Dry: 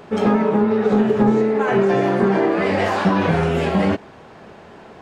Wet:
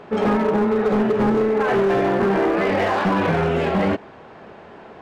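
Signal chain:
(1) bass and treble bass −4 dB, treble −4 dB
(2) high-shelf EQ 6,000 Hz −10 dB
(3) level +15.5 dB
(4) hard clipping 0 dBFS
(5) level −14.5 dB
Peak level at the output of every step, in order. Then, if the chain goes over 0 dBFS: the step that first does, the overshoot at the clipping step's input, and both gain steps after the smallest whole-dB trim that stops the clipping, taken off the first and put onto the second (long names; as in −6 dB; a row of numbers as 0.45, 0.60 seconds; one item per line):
−8.0, −8.0, +7.5, 0.0, −14.5 dBFS
step 3, 7.5 dB
step 3 +7.5 dB, step 5 −6.5 dB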